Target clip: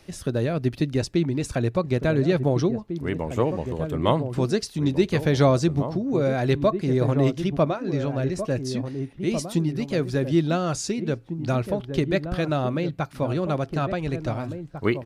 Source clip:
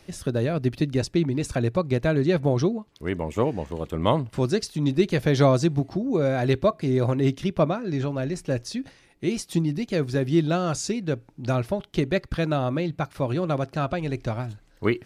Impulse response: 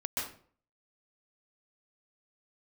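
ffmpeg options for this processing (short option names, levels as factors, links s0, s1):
-filter_complex "[0:a]asplit=2[s0][s1];[s1]adelay=1749,volume=0.398,highshelf=f=4000:g=-39.4[s2];[s0][s2]amix=inputs=2:normalize=0"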